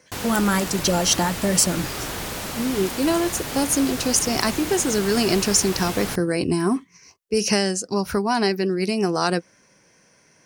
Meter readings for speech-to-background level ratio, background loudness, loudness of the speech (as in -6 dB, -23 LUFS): 7.0 dB, -29.0 LUFS, -22.0 LUFS